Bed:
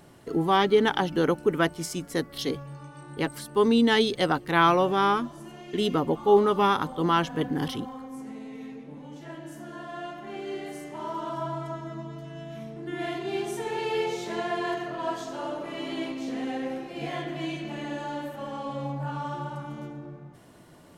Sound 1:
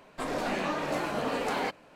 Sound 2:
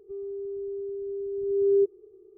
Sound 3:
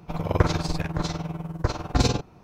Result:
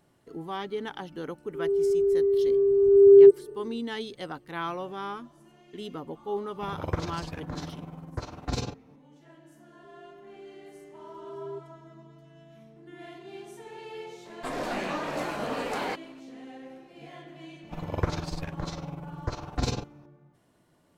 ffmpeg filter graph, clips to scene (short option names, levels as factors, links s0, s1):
-filter_complex "[2:a]asplit=2[s0][s1];[3:a]asplit=2[s2][s3];[0:a]volume=0.224[s4];[s0]dynaudnorm=f=120:g=3:m=5.62[s5];[s2]highpass=46[s6];[s5]atrim=end=2.37,asetpts=PTS-STARTPTS,volume=0.631,afade=t=in:d=0.004:c=hsin,afade=t=out:st=2.366:d=0.004:c=hsin,adelay=1450[s7];[s6]atrim=end=2.43,asetpts=PTS-STARTPTS,volume=0.335,afade=t=in:d=0.004:c=hsin,afade=t=out:st=2.426:d=0.004:c=hsin,adelay=6530[s8];[s1]atrim=end=2.37,asetpts=PTS-STARTPTS,volume=0.133,afade=t=in:d=0.004:c=hsin,afade=t=out:st=2.366:d=0.004:c=hsin,adelay=9740[s9];[1:a]atrim=end=1.95,asetpts=PTS-STARTPTS,volume=0.891,afade=t=in:d=0.004:c=hsin,afade=t=out:st=1.946:d=0.004:c=hsin,adelay=14250[s10];[s3]atrim=end=2.43,asetpts=PTS-STARTPTS,volume=0.422,afade=t=in:d=0.004:c=hsin,afade=t=out:st=2.426:d=0.004:c=hsin,adelay=17630[s11];[s4][s7][s8][s9][s10][s11]amix=inputs=6:normalize=0"